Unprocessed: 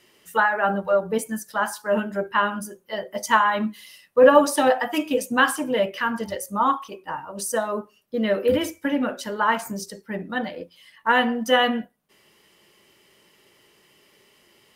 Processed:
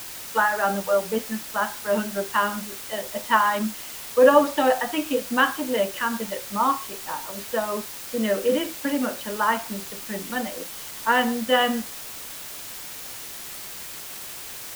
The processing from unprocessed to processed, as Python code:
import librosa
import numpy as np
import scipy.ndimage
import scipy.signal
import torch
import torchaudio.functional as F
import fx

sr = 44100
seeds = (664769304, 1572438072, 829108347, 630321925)

y = scipy.signal.sosfilt(scipy.signal.ellip(3, 1.0, 40, [200.0, 3600.0], 'bandpass', fs=sr, output='sos'), x)
y = fx.quant_dither(y, sr, seeds[0], bits=6, dither='triangular')
y = y * librosa.db_to_amplitude(-1.0)